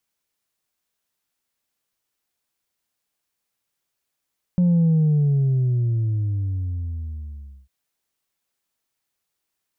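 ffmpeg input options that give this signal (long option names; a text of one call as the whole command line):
ffmpeg -f lavfi -i "aevalsrc='0.188*clip((3.1-t)/2.83,0,1)*tanh(1.19*sin(2*PI*180*3.1/log(65/180)*(exp(log(65/180)*t/3.1)-1)))/tanh(1.19)':duration=3.1:sample_rate=44100" out.wav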